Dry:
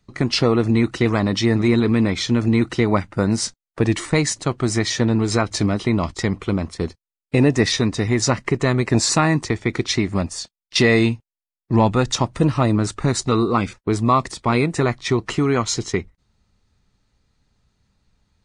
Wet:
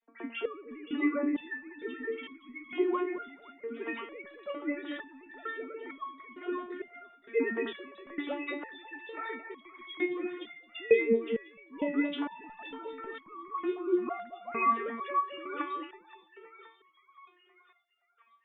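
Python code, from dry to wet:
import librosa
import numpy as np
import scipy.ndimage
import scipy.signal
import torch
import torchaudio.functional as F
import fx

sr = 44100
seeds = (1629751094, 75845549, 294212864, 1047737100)

y = fx.sine_speech(x, sr)
y = fx.echo_split(y, sr, split_hz=820.0, low_ms=218, high_ms=521, feedback_pct=52, wet_db=-6.0)
y = fx.resonator_held(y, sr, hz=2.2, low_hz=230.0, high_hz=1100.0)
y = F.gain(torch.from_numpy(y), 1.5).numpy()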